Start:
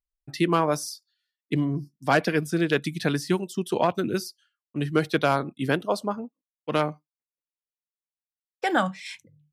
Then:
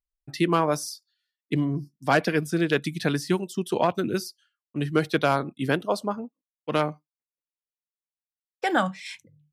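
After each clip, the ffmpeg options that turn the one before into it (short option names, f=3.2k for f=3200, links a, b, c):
-af anull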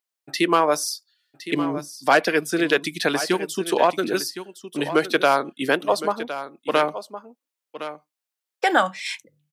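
-filter_complex "[0:a]highpass=380,asplit=2[a][b];[b]acompressor=threshold=-30dB:ratio=6,volume=-1.5dB[c];[a][c]amix=inputs=2:normalize=0,aecho=1:1:1063:0.237,volume=3.5dB"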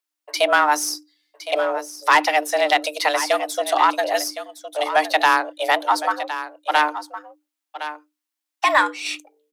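-af "aeval=exprs='if(lt(val(0),0),0.708*val(0),val(0))':c=same,afreqshift=300,acontrast=28,volume=-1.5dB"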